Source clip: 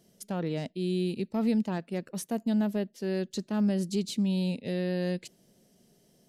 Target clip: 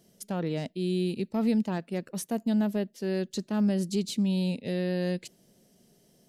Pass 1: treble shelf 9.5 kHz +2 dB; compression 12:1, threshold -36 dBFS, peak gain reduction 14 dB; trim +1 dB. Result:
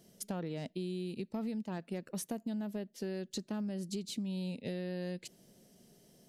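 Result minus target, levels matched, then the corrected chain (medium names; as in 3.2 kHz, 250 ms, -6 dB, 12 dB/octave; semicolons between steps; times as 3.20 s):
compression: peak gain reduction +14 dB
treble shelf 9.5 kHz +2 dB; trim +1 dB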